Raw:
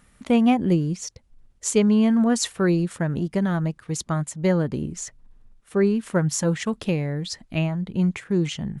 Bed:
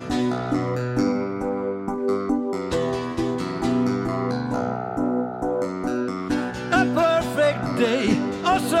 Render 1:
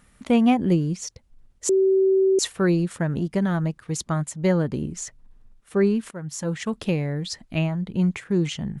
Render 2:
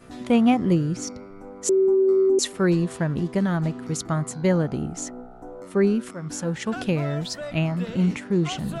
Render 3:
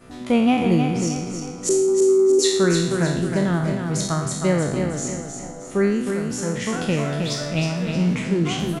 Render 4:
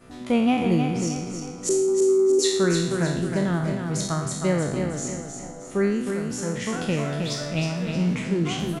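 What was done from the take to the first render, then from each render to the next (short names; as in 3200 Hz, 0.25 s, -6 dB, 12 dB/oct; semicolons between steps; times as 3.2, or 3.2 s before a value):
1.69–2.39 bleep 383 Hz -15 dBFS; 6.11–6.82 fade in, from -19 dB
add bed -15.5 dB
spectral trails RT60 0.75 s; feedback echo 0.313 s, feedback 41%, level -6 dB
gain -3 dB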